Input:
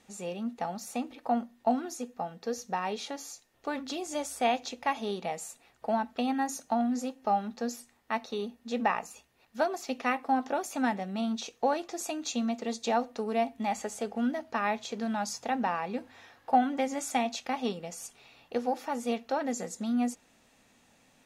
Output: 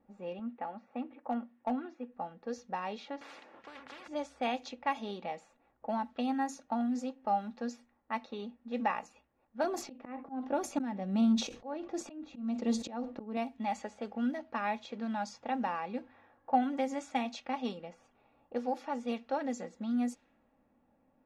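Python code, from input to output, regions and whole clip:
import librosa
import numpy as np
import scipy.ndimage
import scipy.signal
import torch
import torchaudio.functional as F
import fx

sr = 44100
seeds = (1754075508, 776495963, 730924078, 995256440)

y = fx.chain(x, sr, fx.cheby1_bandpass(low_hz=120.0, high_hz=2400.0, order=2),
    fx.peak_eq(hz=180.0, db=-10.0, octaves=0.29),
    fx.overload_stage(gain_db=19.5), at=(0.39, 2.12))
y = fx.chain(y, sr, fx.highpass(hz=360.0, slope=12),
    fx.spectral_comp(ratio=10.0), at=(3.21, 4.08))
y = fx.chain(y, sr, fx.low_shelf(hz=480.0, db=11.0),
    fx.auto_swell(attack_ms=352.0),
    fx.sustainer(db_per_s=110.0), at=(9.64, 13.37))
y = fx.env_lowpass(y, sr, base_hz=880.0, full_db=-25.0)
y = fx.high_shelf(y, sr, hz=6000.0, db=-5.0)
y = y + 0.37 * np.pad(y, (int(3.6 * sr / 1000.0), 0))[:len(y)]
y = y * 10.0 ** (-5.0 / 20.0)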